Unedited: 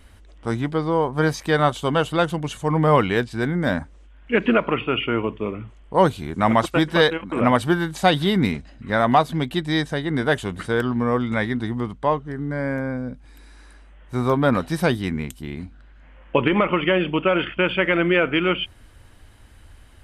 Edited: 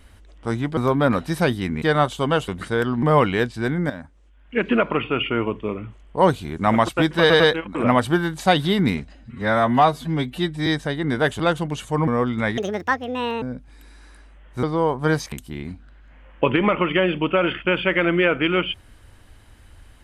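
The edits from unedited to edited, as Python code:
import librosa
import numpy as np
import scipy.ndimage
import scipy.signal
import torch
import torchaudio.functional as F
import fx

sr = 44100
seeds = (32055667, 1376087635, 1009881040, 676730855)

y = fx.edit(x, sr, fx.swap(start_s=0.77, length_s=0.69, other_s=14.19, other_length_s=1.05),
    fx.swap(start_s=2.12, length_s=0.68, other_s=10.46, other_length_s=0.55),
    fx.fade_in_from(start_s=3.67, length_s=0.99, floor_db=-14.5),
    fx.stutter(start_s=6.97, slice_s=0.1, count=3),
    fx.stretch_span(start_s=8.72, length_s=1.01, factor=1.5),
    fx.speed_span(start_s=11.51, length_s=1.47, speed=1.74), tone=tone)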